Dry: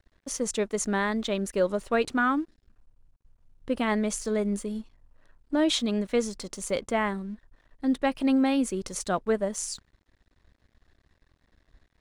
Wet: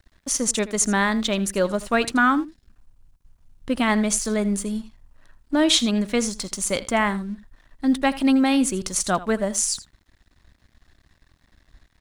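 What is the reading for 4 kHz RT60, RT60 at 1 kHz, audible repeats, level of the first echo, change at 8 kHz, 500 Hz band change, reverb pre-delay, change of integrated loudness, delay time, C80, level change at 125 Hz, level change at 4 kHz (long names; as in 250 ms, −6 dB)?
no reverb audible, no reverb audible, 1, −17.0 dB, +11.0 dB, +2.0 dB, no reverb audible, +6.0 dB, 81 ms, no reverb audible, +6.0 dB, +9.0 dB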